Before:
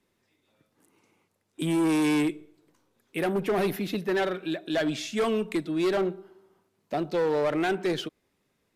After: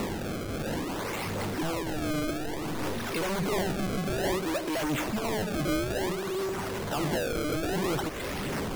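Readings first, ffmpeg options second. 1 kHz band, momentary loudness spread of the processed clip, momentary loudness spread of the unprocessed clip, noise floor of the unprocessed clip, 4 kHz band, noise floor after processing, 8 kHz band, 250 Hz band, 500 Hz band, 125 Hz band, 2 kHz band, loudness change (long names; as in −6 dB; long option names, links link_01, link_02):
+0.5 dB, 4 LU, 9 LU, −75 dBFS, +1.0 dB, −34 dBFS, +6.0 dB, −3.0 dB, −3.0 dB, +4.0 dB, +0.5 dB, −3.0 dB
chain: -filter_complex "[0:a]aeval=exprs='val(0)+0.5*0.0112*sgn(val(0))':channel_layout=same,aeval=exprs='0.119*(cos(1*acos(clip(val(0)/0.119,-1,1)))-cos(1*PI/2))+0.0335*(cos(3*acos(clip(val(0)/0.119,-1,1)))-cos(3*PI/2))+0.0596*(cos(5*acos(clip(val(0)/0.119,-1,1)))-cos(5*PI/2))':channel_layout=same,aphaser=in_gain=1:out_gain=1:delay=2:decay=0.37:speed=1.4:type=sinusoidal,lowpass=3400,acompressor=mode=upward:threshold=-25dB:ratio=2.5,asplit=2[link_01][link_02];[link_02]aeval=exprs='0.0398*(abs(mod(val(0)/0.0398+3,4)-2)-1)':channel_layout=same,volume=-7dB[link_03];[link_01][link_03]amix=inputs=2:normalize=0,acrusher=samples=27:mix=1:aa=0.000001:lfo=1:lforange=43.2:lforate=0.57,volume=-4.5dB"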